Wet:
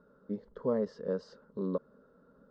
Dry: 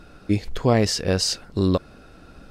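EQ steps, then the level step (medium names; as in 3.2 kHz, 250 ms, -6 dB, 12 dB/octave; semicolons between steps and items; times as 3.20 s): band-pass filter 440 Hz, Q 0.79; distance through air 150 m; static phaser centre 490 Hz, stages 8; -7.0 dB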